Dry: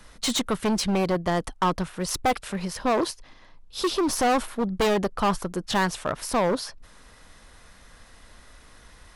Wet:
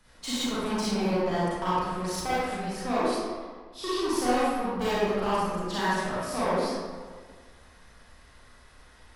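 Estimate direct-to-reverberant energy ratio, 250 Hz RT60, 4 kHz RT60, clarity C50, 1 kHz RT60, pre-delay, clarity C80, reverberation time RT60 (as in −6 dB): −10.0 dB, 1.7 s, 0.95 s, −5.5 dB, 1.6 s, 32 ms, −1.5 dB, 1.6 s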